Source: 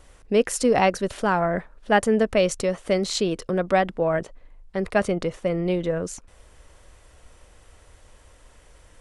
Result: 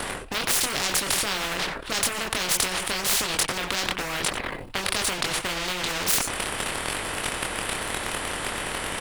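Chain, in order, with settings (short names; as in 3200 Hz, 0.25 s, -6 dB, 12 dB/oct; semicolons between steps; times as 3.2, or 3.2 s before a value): fifteen-band EQ 100 Hz +5 dB, 400 Hz +7 dB, 6300 Hz -12 dB; sample leveller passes 2; reverse; compressor 8:1, threshold -27 dBFS, peak gain reduction 19 dB; reverse; echo 92 ms -20 dB; chorus voices 4, 0.88 Hz, delay 24 ms, depth 4.1 ms; maximiser +29 dB; spectral compressor 10:1; gain -4 dB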